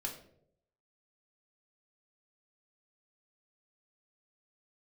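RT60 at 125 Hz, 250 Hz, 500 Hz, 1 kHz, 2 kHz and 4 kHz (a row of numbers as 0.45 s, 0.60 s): 0.95 s, 0.80 s, 0.85 s, 0.55 s, 0.45 s, 0.40 s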